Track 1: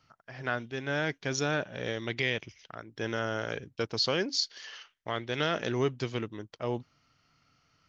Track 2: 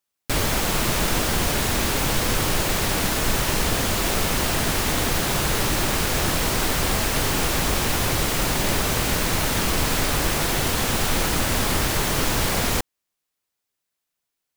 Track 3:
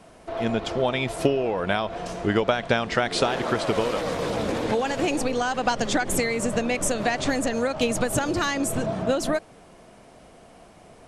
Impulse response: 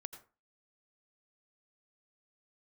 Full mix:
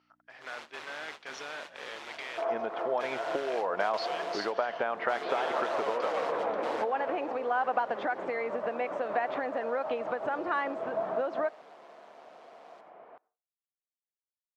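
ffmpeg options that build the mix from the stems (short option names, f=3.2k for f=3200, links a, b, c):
-filter_complex "[0:a]alimiter=limit=-22.5dB:level=0:latency=1:release=23,aeval=exprs='val(0)+0.00447*(sin(2*PI*60*n/s)+sin(2*PI*2*60*n/s)/2+sin(2*PI*3*60*n/s)/3+sin(2*PI*4*60*n/s)/4+sin(2*PI*5*60*n/s)/5)':c=same,volume=-3.5dB,asplit=2[a][b];[1:a]aeval=exprs='val(0)*sin(2*PI*74*n/s)':c=same,volume=-15dB,asplit=2[c][d];[d]volume=-15dB[e];[2:a]lowpass=1.2k,acompressor=threshold=-24dB:ratio=6,adelay=2100,volume=2.5dB,asplit=2[f][g];[g]volume=-13dB[h];[b]apad=whole_len=642251[i];[c][i]sidechaingate=range=-33dB:threshold=-41dB:ratio=16:detection=peak[j];[3:a]atrim=start_sample=2205[k];[e][h]amix=inputs=2:normalize=0[l];[l][k]afir=irnorm=-1:irlink=0[m];[a][j][f][m]amix=inputs=4:normalize=0,highpass=660,lowpass=3.6k"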